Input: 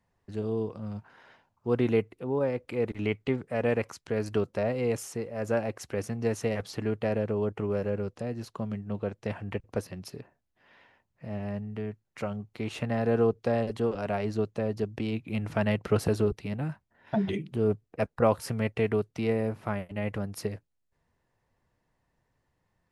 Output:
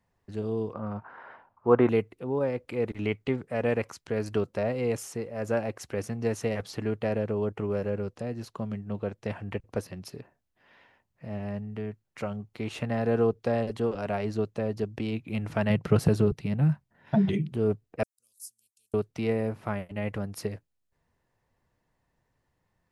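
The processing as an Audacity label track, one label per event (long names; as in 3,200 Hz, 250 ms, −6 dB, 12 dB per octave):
0.730000	1.890000	drawn EQ curve 150 Hz 0 dB, 1,200 Hz +13 dB, 10,000 Hz −25 dB
15.700000	17.530000	parametric band 150 Hz +11 dB
18.030000	18.940000	inverse Chebyshev high-pass filter stop band from 2,100 Hz, stop band 60 dB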